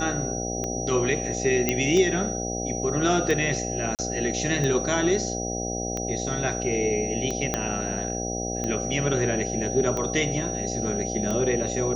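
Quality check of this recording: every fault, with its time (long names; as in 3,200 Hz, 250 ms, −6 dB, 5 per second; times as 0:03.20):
mains buzz 60 Hz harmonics 13 −31 dBFS
scratch tick 45 rpm −16 dBFS
whistle 5,800 Hz −32 dBFS
0:01.69: click −7 dBFS
0:03.95–0:03.99: drop-out 38 ms
0:07.54: click −9 dBFS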